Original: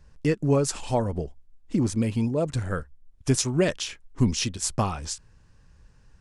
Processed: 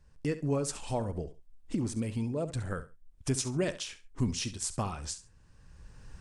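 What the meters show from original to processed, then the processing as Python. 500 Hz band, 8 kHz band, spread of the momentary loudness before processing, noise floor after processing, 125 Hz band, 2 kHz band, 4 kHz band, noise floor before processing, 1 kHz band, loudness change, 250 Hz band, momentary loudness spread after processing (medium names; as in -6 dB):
-8.0 dB, -6.5 dB, 11 LU, -60 dBFS, -7.5 dB, -8.0 dB, -7.5 dB, -57 dBFS, -8.0 dB, -7.5 dB, -8.0 dB, 10 LU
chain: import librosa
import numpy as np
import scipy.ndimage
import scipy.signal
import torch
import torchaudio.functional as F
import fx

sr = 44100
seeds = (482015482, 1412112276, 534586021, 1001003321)

y = fx.recorder_agc(x, sr, target_db=-16.5, rise_db_per_s=15.0, max_gain_db=30)
y = fx.peak_eq(y, sr, hz=8600.0, db=5.5, octaves=0.2)
y = fx.echo_feedback(y, sr, ms=68, feedback_pct=21, wet_db=-14)
y = F.gain(torch.from_numpy(y), -8.5).numpy()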